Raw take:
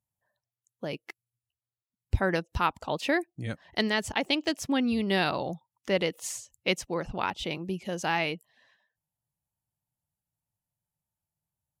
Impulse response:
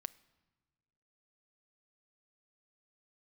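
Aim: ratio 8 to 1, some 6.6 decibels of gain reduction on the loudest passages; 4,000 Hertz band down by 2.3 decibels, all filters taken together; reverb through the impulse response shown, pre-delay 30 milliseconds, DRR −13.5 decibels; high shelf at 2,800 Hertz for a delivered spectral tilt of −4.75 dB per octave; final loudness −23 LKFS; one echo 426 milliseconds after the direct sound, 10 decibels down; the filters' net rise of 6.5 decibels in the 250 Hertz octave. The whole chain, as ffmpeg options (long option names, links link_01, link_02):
-filter_complex "[0:a]equalizer=frequency=250:width_type=o:gain=8,highshelf=frequency=2800:gain=5,equalizer=frequency=4000:width_type=o:gain=-7.5,acompressor=threshold=-23dB:ratio=8,aecho=1:1:426:0.316,asplit=2[link_01][link_02];[1:a]atrim=start_sample=2205,adelay=30[link_03];[link_02][link_03]afir=irnorm=-1:irlink=0,volume=17dB[link_04];[link_01][link_04]amix=inputs=2:normalize=0,volume=-6.5dB"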